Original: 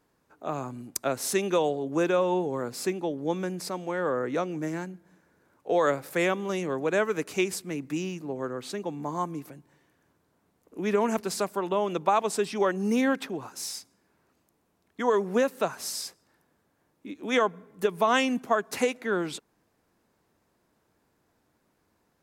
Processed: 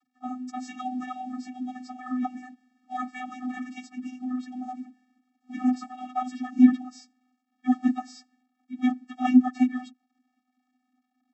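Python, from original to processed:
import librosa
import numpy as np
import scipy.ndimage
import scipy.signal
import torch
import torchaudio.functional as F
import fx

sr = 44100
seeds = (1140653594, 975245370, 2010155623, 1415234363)

y = fx.stretch_vocoder_free(x, sr, factor=0.51)
y = fx.quant_companded(y, sr, bits=6)
y = fx.vocoder(y, sr, bands=32, carrier='square', carrier_hz=252.0)
y = y * 10.0 ** (5.5 / 20.0)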